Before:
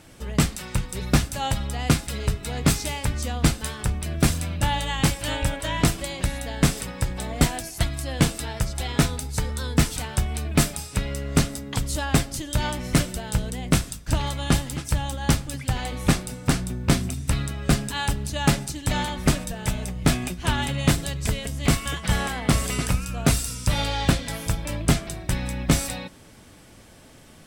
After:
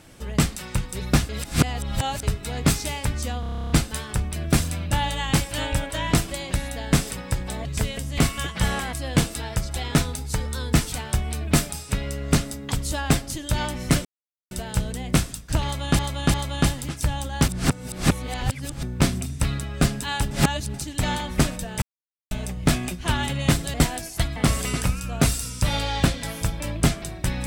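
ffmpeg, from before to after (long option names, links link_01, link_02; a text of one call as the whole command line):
ffmpeg -i in.wav -filter_complex "[0:a]asplit=25[link_01][link_02][link_03][link_04][link_05][link_06][link_07][link_08][link_09][link_10][link_11][link_12][link_13][link_14][link_15][link_16][link_17][link_18][link_19][link_20][link_21][link_22][link_23][link_24][link_25];[link_01]atrim=end=1.292[link_26];[link_02]atrim=start=1.288:end=2.232,asetpts=PTS-STARTPTS,areverse[link_27];[link_03]atrim=start=2.228:end=3.432[link_28];[link_04]atrim=start=3.398:end=3.432[link_29];[link_05]atrim=start=3.398:end=3.432[link_30];[link_06]atrim=start=3.398:end=3.432[link_31];[link_07]atrim=start=3.398:end=3.432[link_32];[link_08]atrim=start=3.398:end=3.432[link_33];[link_09]atrim=start=3.398:end=3.432[link_34];[link_10]atrim=start=3.398:end=3.432[link_35];[link_11]atrim=start=3.398:end=3.432[link_36];[link_12]atrim=start=3.398:end=3.432[link_37];[link_13]atrim=start=3.398:end=7.352[link_38];[link_14]atrim=start=21.128:end=22.412[link_39];[link_15]atrim=start=7.968:end=13.09,asetpts=PTS-STARTPTS,afade=type=out:start_time=5.118:duration=0.004:curve=hsin,apad=pad_dur=0.46[link_40];[link_16]atrim=start=13.09:end=14.572,asetpts=PTS-STARTPTS,afade=type=in:duration=0.004:curve=hsin[link_41];[link_17]atrim=start=14.218:end=14.572[link_42];[link_18]atrim=start=14.218:end=15.362[link_43];[link_19]atrim=start=15.358:end=16.712,asetpts=PTS-STARTPTS,areverse[link_44];[link_20]atrim=start=16.708:end=18.192[link_45];[link_21]atrim=start=18.188:end=18.622,asetpts=PTS-STARTPTS,areverse[link_46];[link_22]atrim=start=18.618:end=19.7,asetpts=PTS-STARTPTS,afade=type=out:start_time=1.078:duration=0.004:curve=hsin,apad=pad_dur=0.49[link_47];[link_23]atrim=start=19.7:end=21.132,asetpts=PTS-STARTPTS,afade=type=in:duration=0.004:curve=hsin[link_48];[link_24]atrim=start=7.348:end=7.972[link_49];[link_25]atrim=start=22.408[link_50];[link_26][link_27]acrossfade=duration=0.004:curve1=hsin:curve2=hsin[link_51];[link_51][link_28]acrossfade=duration=0.004:curve1=hsin:curve2=hsin[link_52];[link_52][link_29]acrossfade=duration=0.004:curve1=hsin:curve2=hsin[link_53];[link_53][link_30]acrossfade=duration=0.004:curve1=hsin:curve2=hsin[link_54];[link_54][link_31]acrossfade=duration=0.004:curve1=hsin:curve2=hsin[link_55];[link_55][link_32]acrossfade=duration=0.004:curve1=hsin:curve2=hsin[link_56];[link_56][link_33]acrossfade=duration=0.004:curve1=hsin:curve2=hsin[link_57];[link_57][link_34]acrossfade=duration=0.004:curve1=hsin:curve2=hsin[link_58];[link_58][link_35]acrossfade=duration=0.004:curve1=hsin:curve2=hsin[link_59];[link_59][link_36]acrossfade=duration=0.004:curve1=hsin:curve2=hsin[link_60];[link_60][link_37]acrossfade=duration=0.004:curve1=hsin:curve2=hsin[link_61];[link_61][link_38]acrossfade=duration=0.004:curve1=hsin:curve2=hsin[link_62];[link_62][link_39]acrossfade=duration=0.004:curve1=hsin:curve2=hsin[link_63];[link_40][link_41]concat=n=2:v=0:a=1[link_64];[link_63][link_64]acrossfade=duration=0.004:curve1=hsin:curve2=hsin[link_65];[link_65][link_42]acrossfade=duration=0.004:curve1=hsin:curve2=hsin[link_66];[link_66][link_43]acrossfade=duration=0.004:curve1=hsin:curve2=hsin[link_67];[link_67][link_44]acrossfade=duration=0.004:curve1=hsin:curve2=hsin[link_68];[link_68][link_45]acrossfade=duration=0.004:curve1=hsin:curve2=hsin[link_69];[link_69][link_46]acrossfade=duration=0.004:curve1=hsin:curve2=hsin[link_70];[link_47][link_48]concat=n=2:v=0:a=1[link_71];[link_70][link_71]acrossfade=duration=0.004:curve1=hsin:curve2=hsin[link_72];[link_72][link_49]acrossfade=duration=0.004:curve1=hsin:curve2=hsin[link_73];[link_73][link_50]acrossfade=duration=0.004:curve1=hsin:curve2=hsin" out.wav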